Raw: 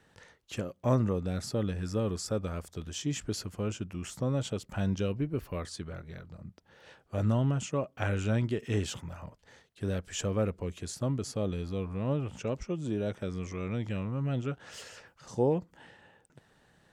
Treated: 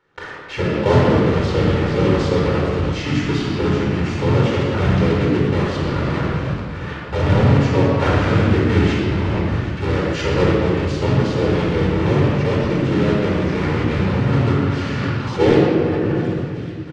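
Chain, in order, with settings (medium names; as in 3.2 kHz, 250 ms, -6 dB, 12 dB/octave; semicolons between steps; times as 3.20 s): block-companded coder 3-bit; gate with hold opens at -52 dBFS; tilt EQ +3 dB/octave; harmony voices -7 st -4 dB, -3 st -1 dB; on a send: feedback echo behind a high-pass 384 ms, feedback 76%, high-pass 1.6 kHz, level -22.5 dB; on the sum: simulated room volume 2900 m³, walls mixed, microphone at 4.4 m; in parallel at -2 dB: compressor with a negative ratio -35 dBFS, ratio -1; on the sum: tape spacing loss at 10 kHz 41 dB; trim +8.5 dB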